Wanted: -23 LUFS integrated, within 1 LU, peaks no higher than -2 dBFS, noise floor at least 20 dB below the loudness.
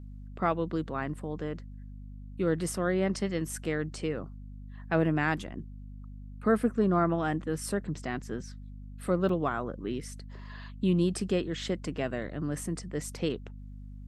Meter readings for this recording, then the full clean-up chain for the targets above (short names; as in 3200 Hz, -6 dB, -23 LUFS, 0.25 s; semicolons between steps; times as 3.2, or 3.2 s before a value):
dropouts 1; longest dropout 3.8 ms; hum 50 Hz; harmonics up to 250 Hz; hum level -41 dBFS; loudness -31.0 LUFS; peak -12.5 dBFS; loudness target -23.0 LUFS
-> interpolate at 9.29, 3.8 ms; de-hum 50 Hz, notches 5; gain +8 dB